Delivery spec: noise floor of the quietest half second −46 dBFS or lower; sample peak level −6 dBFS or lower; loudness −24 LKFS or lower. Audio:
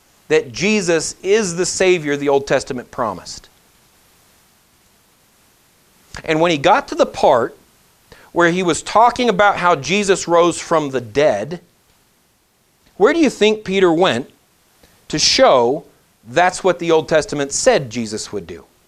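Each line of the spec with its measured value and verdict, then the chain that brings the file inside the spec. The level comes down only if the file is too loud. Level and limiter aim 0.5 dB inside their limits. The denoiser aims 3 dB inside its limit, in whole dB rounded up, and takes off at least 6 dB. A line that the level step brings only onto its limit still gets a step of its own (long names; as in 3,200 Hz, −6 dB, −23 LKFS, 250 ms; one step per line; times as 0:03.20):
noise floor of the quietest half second −59 dBFS: in spec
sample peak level −1.5 dBFS: out of spec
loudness −16.0 LKFS: out of spec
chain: level −8.5 dB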